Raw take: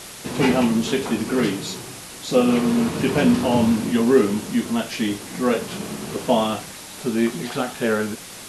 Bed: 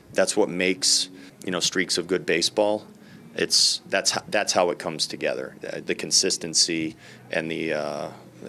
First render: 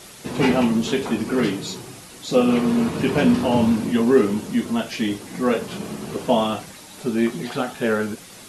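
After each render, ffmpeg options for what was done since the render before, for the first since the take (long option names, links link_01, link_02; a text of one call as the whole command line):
ffmpeg -i in.wav -af "afftdn=noise_reduction=6:noise_floor=-38" out.wav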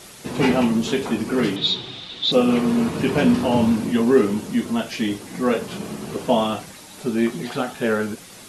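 ffmpeg -i in.wav -filter_complex "[0:a]asettb=1/sr,asplit=3[link_01][link_02][link_03];[link_01]atrim=end=1.564[link_04];[link_02]atrim=start=1.56:end=2.32,asetpts=PTS-STARTPTS,afade=type=in:duration=0.004:curve=qsin,afade=type=out:start_time=0.756:duration=0.004:curve=qsin,lowpass=frequency=3600:width_type=q:width=10[link_05];[link_03]atrim=start=2.316[link_06];[link_04][link_05]acrossfade=duration=0.004:curve1=hsin:curve2=qsin[link_07];[link_07][link_06]acrossfade=duration=0.004:curve1=qsin:curve2=hsin" out.wav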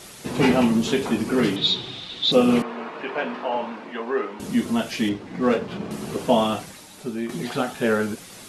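ffmpeg -i in.wav -filter_complex "[0:a]asettb=1/sr,asplit=3[link_01][link_02][link_03];[link_01]atrim=end=2.624[link_04];[link_02]atrim=start=2.62:end=4.4,asetpts=PTS-STARTPTS,afade=type=in:duration=0.004:curve=qsin,afade=type=out:start_time=1.776:duration=0.004:curve=qsin,highpass=660,lowpass=2100[link_05];[link_03]atrim=start=4.396[link_06];[link_04][link_05]acrossfade=duration=0.004:curve1=hsin:curve2=qsin[link_07];[link_07][link_06]acrossfade=duration=0.004:curve1=qsin:curve2=hsin,asettb=1/sr,asplit=3[link_08][link_09][link_10];[link_08]atrim=end=5.094[link_11];[link_09]atrim=start=5.09:end=5.91,asetpts=PTS-STARTPTS,afade=type=in:duration=0.004:curve=qsin,afade=type=out:start_time=0.816:duration=0.004:curve=qsin,adynamicsmooth=sensitivity=3:basefreq=2600[link_12];[link_10]atrim=start=5.906[link_13];[link_11][link_12]acrossfade=duration=0.004:curve1=hsin:curve2=qsin[link_14];[link_14][link_13]acrossfade=duration=0.004:curve1=qsin:curve2=hsin,asplit=2[link_15][link_16];[link_15]atrim=end=7.29,asetpts=PTS-STARTPTS,afade=type=out:start_time=6.61:duration=0.68:silence=0.298538[link_17];[link_16]atrim=start=7.29,asetpts=PTS-STARTPTS,afade=type=in:duration=0.004:curve=hsin:silence=0.298538[link_18];[link_17][link_18]concat=n=2:v=0:a=1" out.wav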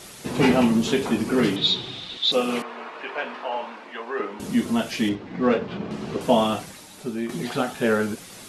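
ffmpeg -i in.wav -filter_complex "[0:a]asettb=1/sr,asplit=3[link_01][link_02][link_03];[link_01]atrim=end=2.174[link_04];[link_02]atrim=start=2.17:end=4.2,asetpts=PTS-STARTPTS,afade=type=in:duration=0.004:curve=qsin,afade=type=out:start_time=2.026:duration=0.004:curve=qsin,highpass=frequency=700:poles=1[link_05];[link_03]atrim=start=4.196[link_06];[link_04][link_05]acrossfade=duration=0.004:curve1=hsin:curve2=qsin[link_07];[link_07][link_06]acrossfade=duration=0.004:curve1=qsin:curve2=hsin,asettb=1/sr,asplit=3[link_08][link_09][link_10];[link_08]atrim=end=5.154[link_11];[link_09]atrim=start=5.15:end=6.21,asetpts=PTS-STARTPTS,afade=type=in:duration=0.004:curve=qsin,afade=type=out:start_time=1.056:duration=0.004:curve=qsin,lowpass=4700[link_12];[link_10]atrim=start=6.206[link_13];[link_11][link_12]acrossfade=duration=0.004:curve1=hsin:curve2=qsin[link_14];[link_14][link_13]acrossfade=duration=0.004:curve1=qsin:curve2=hsin" out.wav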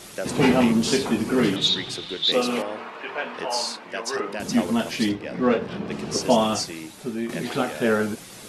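ffmpeg -i in.wav -i bed.wav -filter_complex "[1:a]volume=-10dB[link_01];[0:a][link_01]amix=inputs=2:normalize=0" out.wav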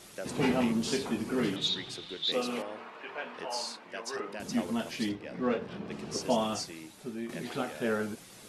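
ffmpeg -i in.wav -af "volume=-9.5dB" out.wav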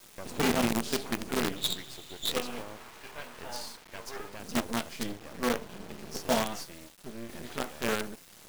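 ffmpeg -i in.wav -af "acrusher=bits=5:dc=4:mix=0:aa=0.000001" out.wav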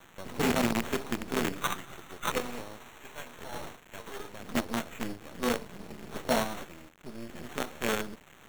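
ffmpeg -i in.wav -filter_complex "[0:a]acrossover=split=400[link_01][link_02];[link_02]aeval=exprs='sgn(val(0))*max(abs(val(0))-0.001,0)':channel_layout=same[link_03];[link_01][link_03]amix=inputs=2:normalize=0,acrusher=samples=9:mix=1:aa=0.000001" out.wav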